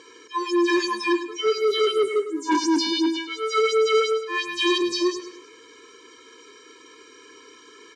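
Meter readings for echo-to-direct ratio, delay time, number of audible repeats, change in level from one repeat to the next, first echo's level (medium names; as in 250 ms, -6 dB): -10.5 dB, 104 ms, 3, -7.0 dB, -11.5 dB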